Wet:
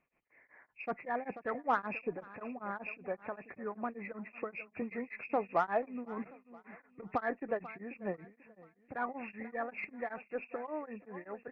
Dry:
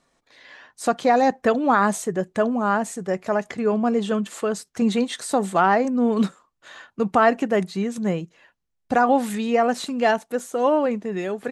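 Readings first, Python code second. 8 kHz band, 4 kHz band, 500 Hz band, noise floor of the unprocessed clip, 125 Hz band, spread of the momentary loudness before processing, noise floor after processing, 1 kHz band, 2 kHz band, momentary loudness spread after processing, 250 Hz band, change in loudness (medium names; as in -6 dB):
under -40 dB, under -25 dB, -17.0 dB, -74 dBFS, -21.0 dB, 9 LU, -74 dBFS, -16.0 dB, -13.5 dB, 13 LU, -20.5 dB, -17.0 dB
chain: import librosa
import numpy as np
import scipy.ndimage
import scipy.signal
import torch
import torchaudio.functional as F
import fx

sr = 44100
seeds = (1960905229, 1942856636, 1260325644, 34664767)

y = fx.freq_compress(x, sr, knee_hz=1700.0, ratio=4.0)
y = fx.high_shelf(y, sr, hz=2200.0, db=-4.0)
y = fx.hpss(y, sr, part='harmonic', gain_db=-11)
y = fx.cheby_harmonics(y, sr, harmonics=(5, 8), levels_db=(-30, -42), full_scale_db=-7.5)
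y = fx.echo_feedback(y, sr, ms=488, feedback_pct=37, wet_db=-17.5)
y = y * np.abs(np.cos(np.pi * 5.2 * np.arange(len(y)) / sr))
y = y * librosa.db_to_amplitude(-8.5)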